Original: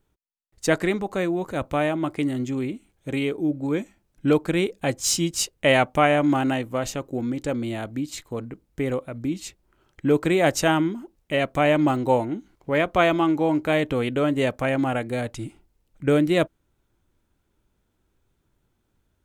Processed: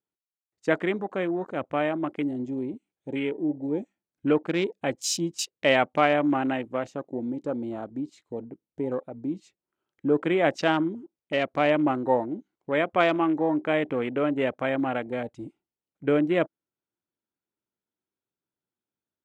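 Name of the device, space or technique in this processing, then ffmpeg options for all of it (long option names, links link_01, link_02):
over-cleaned archive recording: -af "highpass=190,lowpass=7000,afwtdn=0.02,volume=-2.5dB"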